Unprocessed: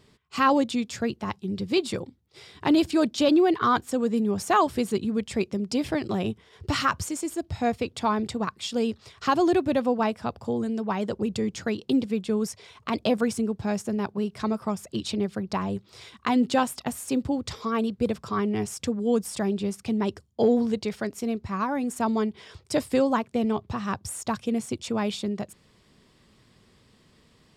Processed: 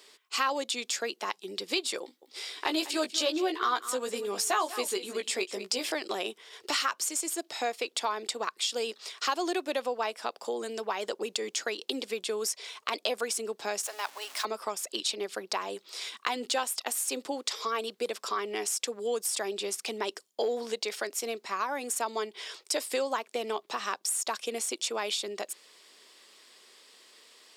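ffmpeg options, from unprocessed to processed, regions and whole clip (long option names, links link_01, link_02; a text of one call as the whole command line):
ffmpeg -i in.wav -filter_complex "[0:a]asettb=1/sr,asplit=3[link_01][link_02][link_03];[link_01]atrim=end=2.024[link_04];[link_02]atrim=start=2.02:end=5.92,asetpts=PTS-STARTPTS,afade=type=in:duration=0.004:curve=qsin,afade=type=out:start_time=3.896:duration=0.004:curve=qsin,asplit=2[link_05][link_06];[link_06]adelay=16,volume=-5dB[link_07];[link_05][link_07]amix=inputs=2:normalize=0,atrim=end_sample=171990,aecho=1:1:196:0.158,atrim=end_sample=171990[link_08];[link_03]atrim=start=5.916[link_09];[link_04][link_08]acrossfade=duration=0.004:curve1=hsin:curve2=qsin[link_10];[link_10][link_09]acrossfade=duration=0.004:curve1=qsin:curve2=hsin,asettb=1/sr,asplit=3[link_11][link_12][link_13];[link_11]atrim=end=13.834[link_14];[link_12]atrim=start=13.83:end=14.45,asetpts=PTS-STARTPTS,afade=type=in:duration=0.004:curve=qsin,afade=type=out:start_time=0.616:duration=0.004:curve=qsin,aeval=exprs='val(0)+0.5*0.00794*sgn(val(0))':channel_layout=same,highpass=frequency=660:width=0.5412,highpass=frequency=660:width=1.3066,aeval=exprs='val(0)+0.00398*(sin(2*PI*60*n/s)+sin(2*PI*2*60*n/s)/2+sin(2*PI*3*60*n/s)/3+sin(2*PI*4*60*n/s)/4+sin(2*PI*5*60*n/s)/5)':channel_layout=same[link_15];[link_13]atrim=start=14.446[link_16];[link_14][link_15]acrossfade=duration=0.004:curve1=hsin:curve2=qsin[link_17];[link_17][link_16]acrossfade=duration=0.004:curve1=qsin:curve2=hsin,highpass=frequency=370:width=0.5412,highpass=frequency=370:width=1.3066,highshelf=frequency=2000:gain=11.5,acompressor=threshold=-30dB:ratio=2.5" out.wav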